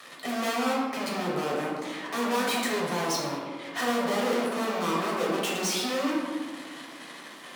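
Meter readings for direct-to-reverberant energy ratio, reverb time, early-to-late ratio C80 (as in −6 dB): −4.5 dB, 1.6 s, 2.5 dB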